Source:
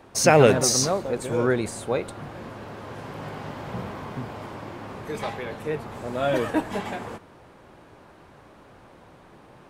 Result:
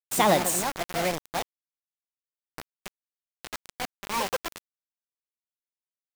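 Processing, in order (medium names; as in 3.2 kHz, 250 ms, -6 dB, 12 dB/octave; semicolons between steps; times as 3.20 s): gliding tape speed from 136% -> 179%; bit crusher 4-bit; trim -5.5 dB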